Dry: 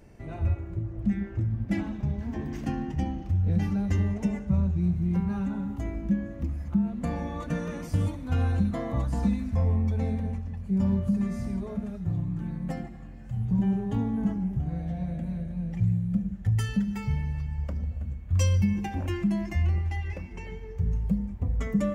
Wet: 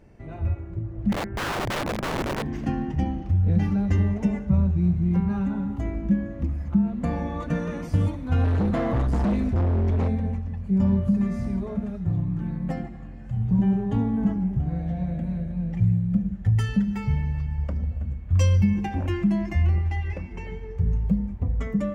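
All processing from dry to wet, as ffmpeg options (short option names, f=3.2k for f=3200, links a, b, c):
-filter_complex "[0:a]asettb=1/sr,asplit=3[a][b][c];[a]atrim=end=1.124[d];[b]atrim=start=1.12:end=2.43,asetpts=PTS-STARTPTS,afade=t=in:d=0.004:c=qsin,afade=t=out:st=1.306:d=0.004:c=qsin,lowpass=f=2.4k:w=0.5412,lowpass=f=2.4k:w=1.3066,equalizer=f=110:t=o:w=1.1:g=11,aeval=exprs='(mod(18.8*val(0)+1,2)-1)/18.8':c=same[e];[c]atrim=start=2.426[f];[d][e]acrossfade=d=0.004:c1=hsin:c2=qsin[g];[g][f]acrossfade=d=0.004:c1=qsin:c2=hsin,asettb=1/sr,asplit=3[h][i][j];[h]atrim=end=8.444[k];[i]atrim=start=8.44:end=10.08,asetpts=PTS-STARTPTS,afade=t=in:d=0.004:c=qsin,afade=t=out:st=1.636:d=0.004:c=qsin,acontrast=28,asoftclip=type=hard:threshold=-24dB[l];[j]atrim=start=10.076[m];[k][l]acrossfade=d=0.004:c1=hsin:c2=qsin[n];[n][m]acrossfade=d=0.004:c1=qsin:c2=hsin,highshelf=f=5.2k:g=-10.5,dynaudnorm=f=710:g=3:m=4dB"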